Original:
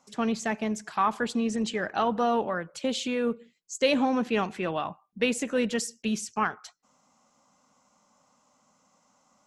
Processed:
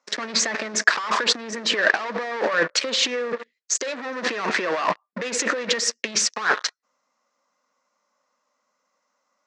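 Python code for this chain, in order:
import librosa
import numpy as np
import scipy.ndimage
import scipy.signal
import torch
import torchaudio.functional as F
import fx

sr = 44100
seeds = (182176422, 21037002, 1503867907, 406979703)

y = fx.dynamic_eq(x, sr, hz=960.0, q=2.2, threshold_db=-42.0, ratio=4.0, max_db=4)
y = fx.leveller(y, sr, passes=5)
y = fx.over_compress(y, sr, threshold_db=-19.0, ratio=-0.5)
y = fx.cabinet(y, sr, low_hz=450.0, low_slope=12, high_hz=5800.0, hz=(510.0, 790.0, 1800.0, 3100.0), db=(3, -9, 7, -5))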